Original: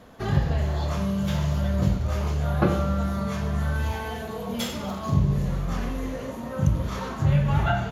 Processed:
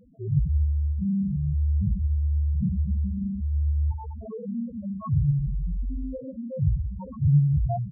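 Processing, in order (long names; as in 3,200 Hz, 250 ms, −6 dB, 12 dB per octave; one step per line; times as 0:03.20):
running median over 15 samples
spectral peaks only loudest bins 2
level +3.5 dB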